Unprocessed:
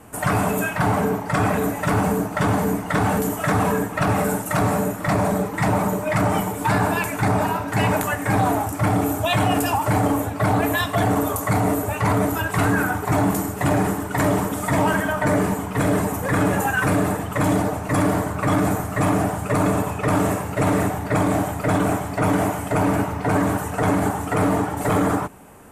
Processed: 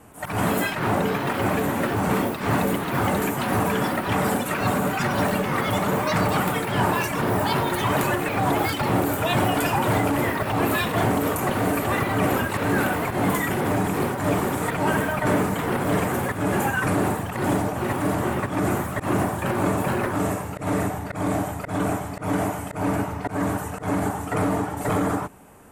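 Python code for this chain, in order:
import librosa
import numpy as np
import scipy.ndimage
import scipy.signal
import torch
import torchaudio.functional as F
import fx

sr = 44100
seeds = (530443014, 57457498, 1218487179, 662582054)

y = fx.auto_swell(x, sr, attack_ms=139.0)
y = fx.echo_pitch(y, sr, ms=119, semitones=4, count=3, db_per_echo=-3.0)
y = F.gain(torch.from_numpy(y), -3.5).numpy()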